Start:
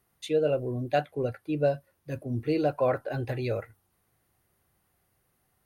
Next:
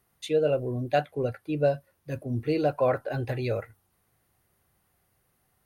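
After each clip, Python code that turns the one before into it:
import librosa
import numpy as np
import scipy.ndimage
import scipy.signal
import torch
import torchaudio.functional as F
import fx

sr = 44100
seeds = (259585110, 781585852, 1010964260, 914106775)

y = fx.peak_eq(x, sr, hz=320.0, db=-2.0, octaves=0.44)
y = y * 10.0 ** (1.5 / 20.0)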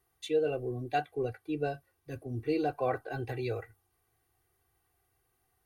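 y = x + 0.83 * np.pad(x, (int(2.6 * sr / 1000.0), 0))[:len(x)]
y = y * 10.0 ** (-7.0 / 20.0)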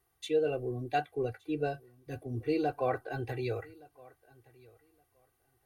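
y = fx.echo_feedback(x, sr, ms=1168, feedback_pct=17, wet_db=-24)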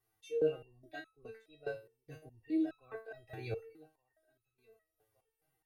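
y = fx.resonator_held(x, sr, hz=4.8, low_hz=110.0, high_hz=1300.0)
y = y * 10.0 ** (4.5 / 20.0)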